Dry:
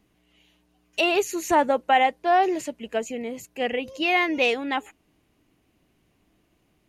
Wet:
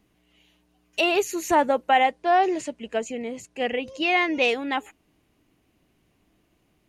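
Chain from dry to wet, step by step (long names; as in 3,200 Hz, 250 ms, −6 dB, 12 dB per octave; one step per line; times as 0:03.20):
0:02.11–0:04.48: low-pass filter 9,600 Hz 24 dB per octave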